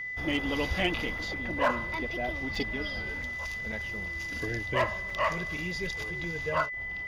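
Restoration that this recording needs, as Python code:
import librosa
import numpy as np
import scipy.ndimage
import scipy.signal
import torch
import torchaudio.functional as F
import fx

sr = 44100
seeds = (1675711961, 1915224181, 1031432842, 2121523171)

y = fx.fix_declip(x, sr, threshold_db=-18.5)
y = fx.notch(y, sr, hz=2000.0, q=30.0)
y = fx.fix_interpolate(y, sr, at_s=(1.18, 2.55, 3.22, 3.72, 5.1), length_ms=4.0)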